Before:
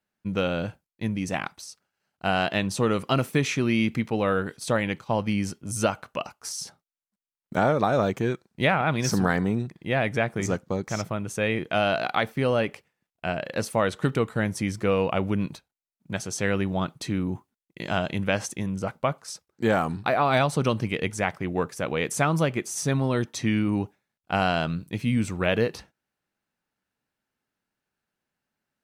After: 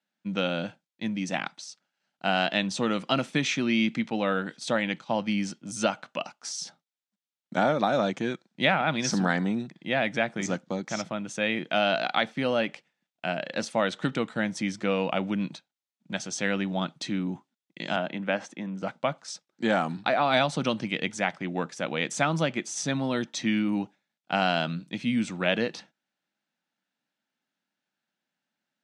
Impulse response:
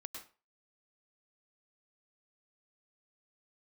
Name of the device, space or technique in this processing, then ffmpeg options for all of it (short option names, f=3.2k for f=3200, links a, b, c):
television speaker: -filter_complex "[0:a]highpass=f=170:w=0.5412,highpass=f=170:w=1.3066,equalizer=f=420:t=q:w=4:g=-10,equalizer=f=1.1k:t=q:w=4:g=-5,equalizer=f=3.5k:t=q:w=4:g=5,lowpass=f=7.5k:w=0.5412,lowpass=f=7.5k:w=1.3066,asettb=1/sr,asplit=3[a][b][c];[a]atrim=end=17.964[d];[b]atrim=start=17.96:end=18.83,asetpts=PTS-STARTPTS,afade=t=in:d=0.004:c=qsin,afade=t=out:st=0.866:d=0.004:c=qsin,acrossover=split=170 2400:gain=0.251 1 0.224[e][f][g];[e][f][g]amix=inputs=3:normalize=0[h];[c]atrim=start=18.826[i];[d][h]acrossfade=d=0.004:c1=hsin:c2=qsin[j];[j][i]acrossfade=d=0.004:c1=qsin:c2=hsin"